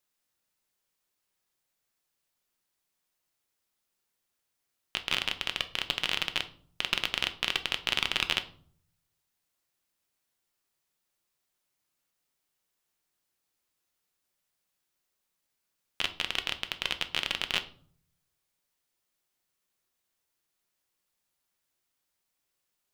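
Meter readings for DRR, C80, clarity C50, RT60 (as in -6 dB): 8.0 dB, 20.0 dB, 15.0 dB, 0.55 s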